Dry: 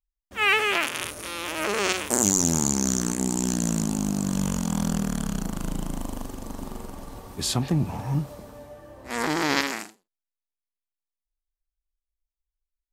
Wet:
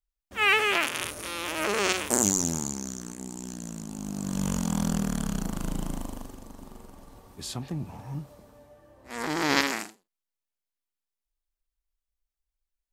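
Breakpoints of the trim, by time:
2.17 s -1 dB
2.95 s -13 dB
3.84 s -13 dB
4.51 s -1.5 dB
5.90 s -1.5 dB
6.52 s -10 dB
9.00 s -10 dB
9.57 s +0.5 dB

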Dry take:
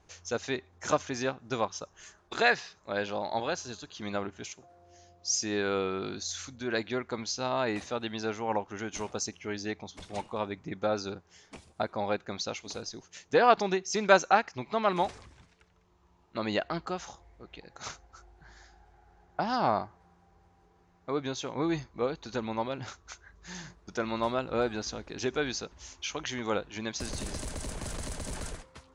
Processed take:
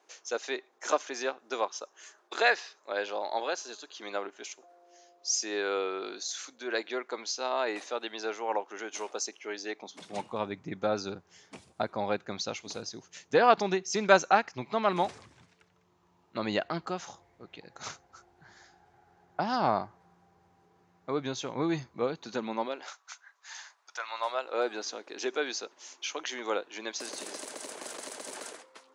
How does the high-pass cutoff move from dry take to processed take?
high-pass 24 dB/octave
9.71 s 340 Hz
10.30 s 100 Hz
21.92 s 100 Hz
22.63 s 210 Hz
23.01 s 810 Hz
24.08 s 810 Hz
24.70 s 320 Hz

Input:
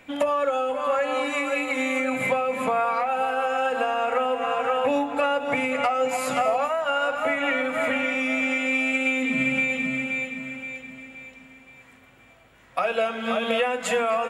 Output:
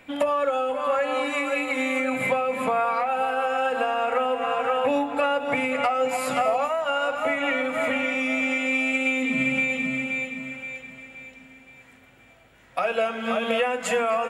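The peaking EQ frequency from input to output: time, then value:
peaking EQ -5.5 dB 0.23 oct
6.4 kHz
from 6.54 s 1.6 kHz
from 10.52 s 260 Hz
from 11.20 s 1.1 kHz
from 12.83 s 3.7 kHz

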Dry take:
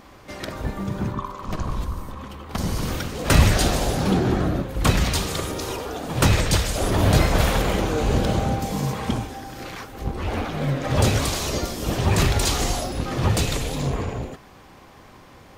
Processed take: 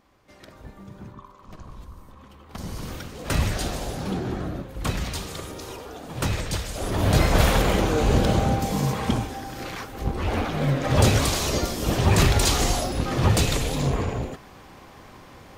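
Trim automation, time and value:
1.76 s -15 dB
2.79 s -8 dB
6.68 s -8 dB
7.39 s +1 dB

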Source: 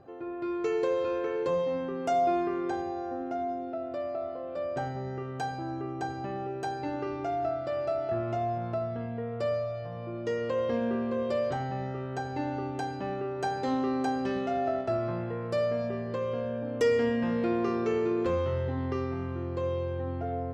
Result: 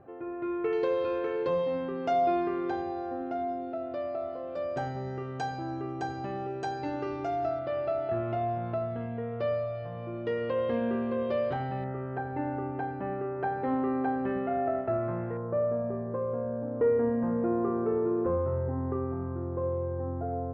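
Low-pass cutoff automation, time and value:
low-pass 24 dB/octave
2.6 kHz
from 0.73 s 4.6 kHz
from 4.34 s 7.1 kHz
from 7.59 s 3.6 kHz
from 11.84 s 2.1 kHz
from 15.37 s 1.3 kHz

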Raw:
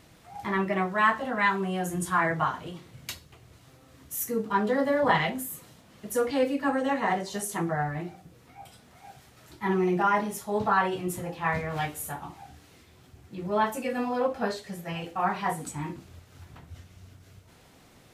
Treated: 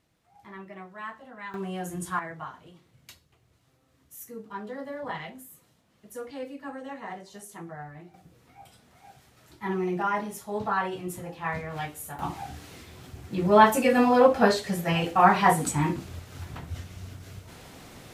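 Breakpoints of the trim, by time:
-16 dB
from 1.54 s -4 dB
from 2.19 s -12 dB
from 8.14 s -3.5 dB
from 12.19 s +9 dB

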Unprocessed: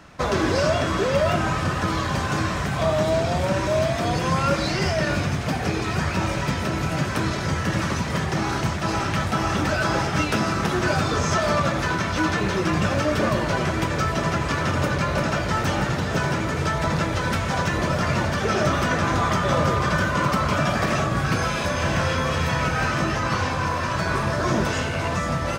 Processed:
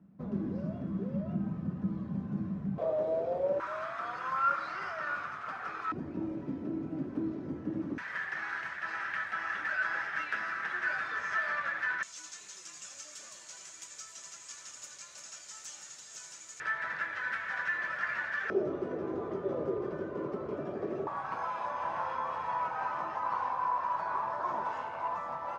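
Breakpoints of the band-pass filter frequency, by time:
band-pass filter, Q 5.7
200 Hz
from 2.78 s 510 Hz
from 3.60 s 1.3 kHz
from 5.92 s 290 Hz
from 7.98 s 1.7 kHz
from 12.03 s 7.1 kHz
from 16.60 s 1.7 kHz
from 18.50 s 390 Hz
from 21.07 s 930 Hz

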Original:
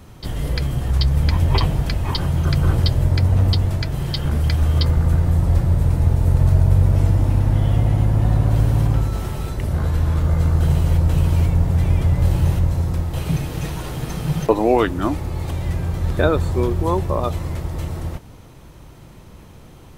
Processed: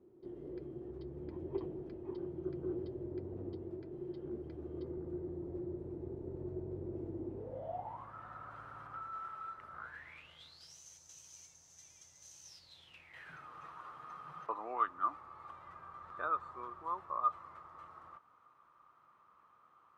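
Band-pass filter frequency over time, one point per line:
band-pass filter, Q 14
7.30 s 360 Hz
8.14 s 1.3 kHz
9.79 s 1.3 kHz
10.78 s 6.2 kHz
12.43 s 6.2 kHz
13.47 s 1.2 kHz

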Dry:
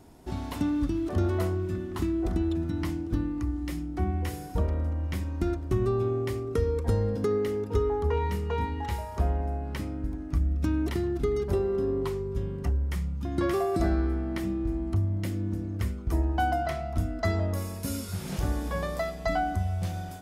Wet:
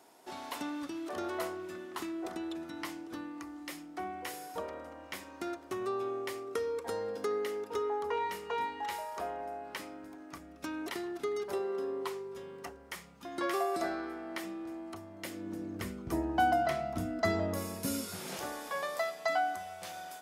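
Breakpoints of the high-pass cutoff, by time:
15.18 s 570 Hz
16.01 s 180 Hz
17.88 s 180 Hz
18.61 s 670 Hz

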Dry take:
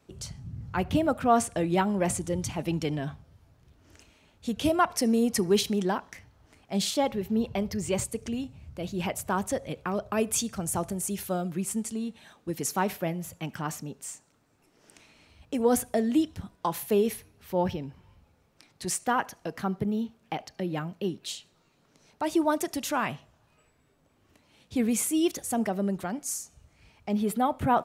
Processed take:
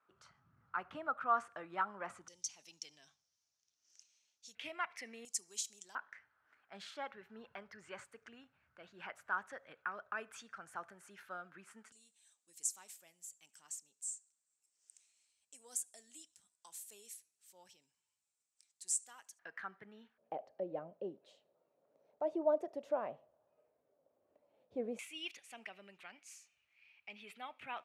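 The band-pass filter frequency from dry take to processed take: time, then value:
band-pass filter, Q 4.7
1.3 kHz
from 2.28 s 5.9 kHz
from 4.55 s 2.1 kHz
from 5.25 s 7.2 kHz
from 5.95 s 1.5 kHz
from 11.92 s 7.8 kHz
from 19.39 s 1.7 kHz
from 20.18 s 570 Hz
from 24.99 s 2.5 kHz

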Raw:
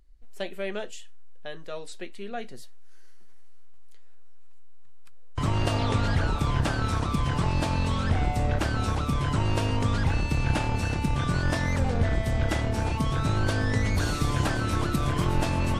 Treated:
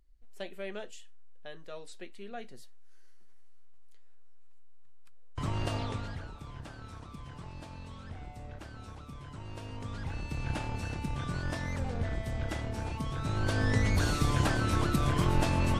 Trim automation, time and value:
5.76 s -7.5 dB
6.33 s -19.5 dB
9.34 s -19.5 dB
10.51 s -9 dB
13.18 s -9 dB
13.66 s -2 dB

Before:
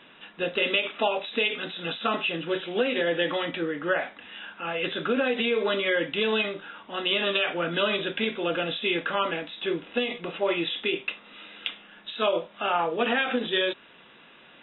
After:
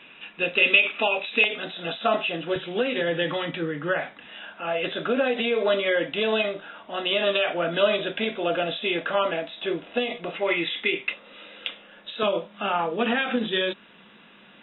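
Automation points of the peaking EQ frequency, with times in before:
peaking EQ +11 dB 0.33 oct
2.5 kHz
from 1.44 s 670 Hz
from 2.56 s 150 Hz
from 4.28 s 650 Hz
from 10.35 s 2.1 kHz
from 11.13 s 540 Hz
from 12.23 s 200 Hz

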